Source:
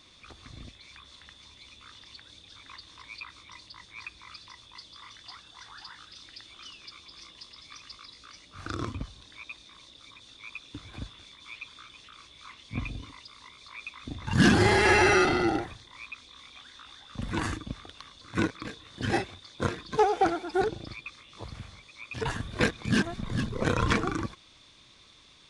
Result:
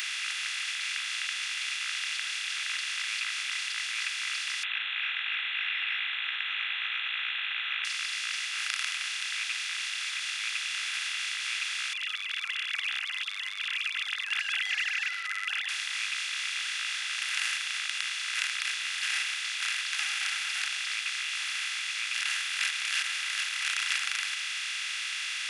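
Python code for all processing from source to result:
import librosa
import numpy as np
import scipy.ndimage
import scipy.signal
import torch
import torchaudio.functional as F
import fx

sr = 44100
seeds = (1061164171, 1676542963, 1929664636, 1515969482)

y = fx.chain(x, sr, fx.leveller(passes=3),
    fx.freq_invert(carrier_hz=3600), at=(4.63, 7.85))
y = fx.chain(y, sr, fx.sine_speech(),
    fx.highpass(hz=1400.0, slope=6),
    fx.over_compress(threshold_db=-28.0, ratio=-0.5), at=(11.93, 15.69))
y = fx.bin_compress(y, sr, power=0.2)
y = scipy.signal.sosfilt(scipy.signal.bessel(6, 2600.0, 'highpass', norm='mag', fs=sr, output='sos'), y)
y = fx.high_shelf(y, sr, hz=9500.0, db=10.0)
y = y * librosa.db_to_amplitude(-3.5)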